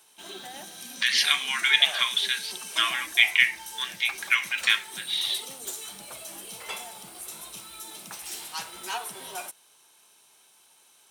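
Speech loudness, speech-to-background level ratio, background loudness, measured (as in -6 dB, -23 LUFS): -23.5 LUFS, 13.5 dB, -37.0 LUFS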